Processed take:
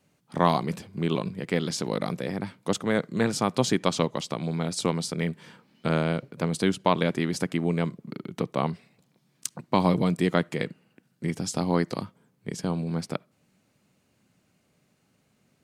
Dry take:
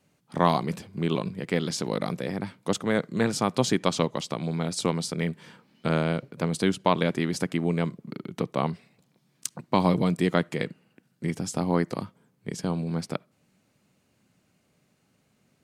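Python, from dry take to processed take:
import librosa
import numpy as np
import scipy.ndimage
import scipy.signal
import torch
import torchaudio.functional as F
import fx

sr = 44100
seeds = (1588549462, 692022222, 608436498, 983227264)

y = fx.peak_eq(x, sr, hz=4300.0, db=5.5, octaves=1.0, at=(11.39, 12.01))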